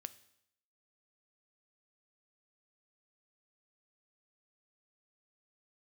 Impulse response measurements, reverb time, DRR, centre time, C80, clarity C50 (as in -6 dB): 0.75 s, 13.0 dB, 4 ms, 20.0 dB, 17.5 dB